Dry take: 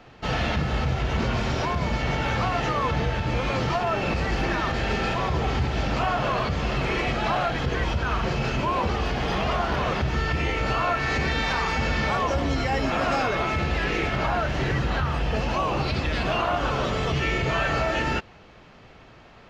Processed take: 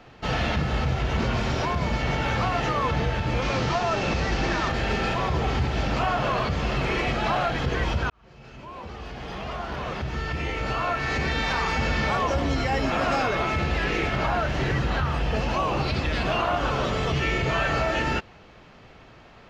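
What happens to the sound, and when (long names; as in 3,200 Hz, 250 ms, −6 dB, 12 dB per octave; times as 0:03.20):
0:03.42–0:04.69: linear delta modulator 32 kbit/s, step −27.5 dBFS
0:08.10–0:11.70: fade in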